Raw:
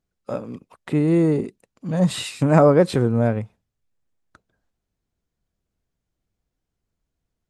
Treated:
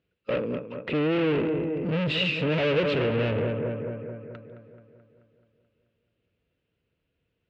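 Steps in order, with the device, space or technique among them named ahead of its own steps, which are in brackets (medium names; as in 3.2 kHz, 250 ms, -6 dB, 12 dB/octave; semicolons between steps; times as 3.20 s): analogue delay pedal into a guitar amplifier (bucket-brigade echo 216 ms, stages 4096, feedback 58%, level -12 dB; valve stage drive 31 dB, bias 0.45; cabinet simulation 82–3700 Hz, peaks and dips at 210 Hz -4 dB, 480 Hz +7 dB, 780 Hz -9 dB, 1.1 kHz -4 dB, 2.7 kHz +10 dB); trim +7 dB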